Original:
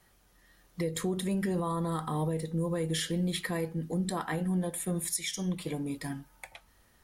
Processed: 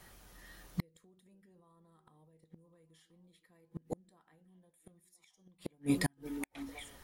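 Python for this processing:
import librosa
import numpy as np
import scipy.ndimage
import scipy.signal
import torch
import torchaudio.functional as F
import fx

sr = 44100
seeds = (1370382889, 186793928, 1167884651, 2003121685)

y = fx.echo_stepped(x, sr, ms=512, hz=330.0, octaves=1.4, feedback_pct=70, wet_db=-11.5)
y = fx.gate_flip(y, sr, shuts_db=-26.0, range_db=-41)
y = y * 10.0 ** (7.0 / 20.0)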